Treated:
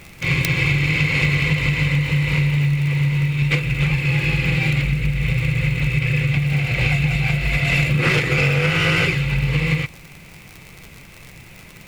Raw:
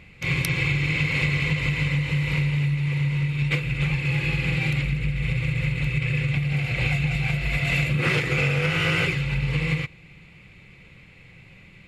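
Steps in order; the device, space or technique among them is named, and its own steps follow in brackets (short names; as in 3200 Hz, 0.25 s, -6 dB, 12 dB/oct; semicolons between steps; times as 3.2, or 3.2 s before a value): record under a worn stylus (tracing distortion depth 0.069 ms; crackle 79/s -32 dBFS; pink noise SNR 29 dB); gain +5 dB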